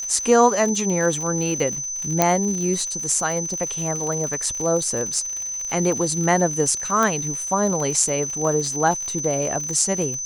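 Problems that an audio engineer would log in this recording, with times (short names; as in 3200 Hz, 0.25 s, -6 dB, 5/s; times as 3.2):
crackle 96/s -27 dBFS
tone 6100 Hz -26 dBFS
2.22 pop -1 dBFS
7.03 pop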